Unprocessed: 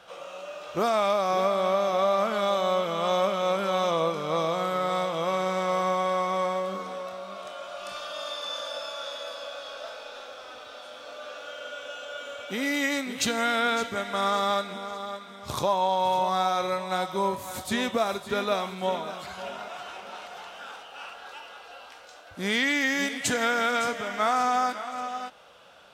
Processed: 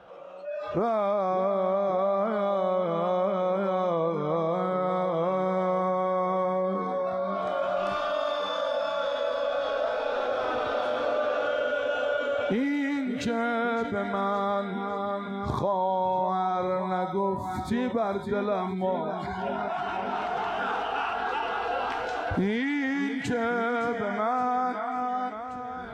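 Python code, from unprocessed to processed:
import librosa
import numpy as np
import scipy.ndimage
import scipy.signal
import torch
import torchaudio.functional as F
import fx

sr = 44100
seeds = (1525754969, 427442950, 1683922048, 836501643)

y = fx.recorder_agc(x, sr, target_db=-16.0, rise_db_per_s=8.1, max_gain_db=30)
y = fx.lowpass(y, sr, hz=3700.0, slope=6)
y = fx.high_shelf(y, sr, hz=2600.0, db=-9.0)
y = fx.noise_reduce_blind(y, sr, reduce_db=22)
y = fx.tilt_shelf(y, sr, db=4.5, hz=1300.0)
y = fx.echo_feedback(y, sr, ms=1130, feedback_pct=38, wet_db=-20)
y = fx.env_flatten(y, sr, amount_pct=50)
y = F.gain(torch.from_numpy(y), -5.5).numpy()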